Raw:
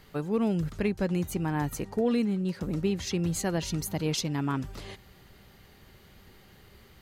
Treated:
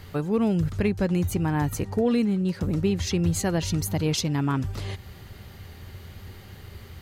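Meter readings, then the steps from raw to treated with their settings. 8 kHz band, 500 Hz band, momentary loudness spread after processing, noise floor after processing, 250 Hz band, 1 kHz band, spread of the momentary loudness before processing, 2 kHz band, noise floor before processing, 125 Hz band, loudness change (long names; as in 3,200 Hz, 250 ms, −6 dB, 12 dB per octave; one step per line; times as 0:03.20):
+3.5 dB, +3.5 dB, 20 LU, −45 dBFS, +4.0 dB, +3.5 dB, 5 LU, +3.5 dB, −56 dBFS, +6.5 dB, +4.5 dB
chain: parametric band 90 Hz +14 dB 0.59 octaves
in parallel at −1 dB: downward compressor, threshold −40 dBFS, peak gain reduction 17.5 dB
on the sum: level +2 dB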